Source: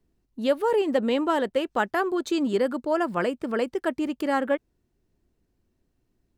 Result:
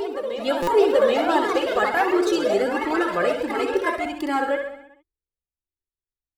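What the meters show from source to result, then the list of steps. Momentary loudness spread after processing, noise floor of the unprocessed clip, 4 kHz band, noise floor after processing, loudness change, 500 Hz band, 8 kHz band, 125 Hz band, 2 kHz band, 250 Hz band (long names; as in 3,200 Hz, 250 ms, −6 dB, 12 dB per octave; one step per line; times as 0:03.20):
8 LU, −74 dBFS, +5.5 dB, below −85 dBFS, +4.0 dB, +4.5 dB, +6.0 dB, −1.0 dB, +6.0 dB, +1.0 dB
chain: downward expander −43 dBFS
comb filter 2.4 ms, depth 56%
on a send: repeating echo 65 ms, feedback 58%, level −7 dB
on the sum: delay with pitch and tempo change per echo 429 ms, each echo +4 semitones, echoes 2, each echo −6 dB
backwards echo 783 ms −10 dB
buffer that repeats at 0:00.62, samples 256, times 8
flanger whose copies keep moving one way rising 1.4 Hz
level +5.5 dB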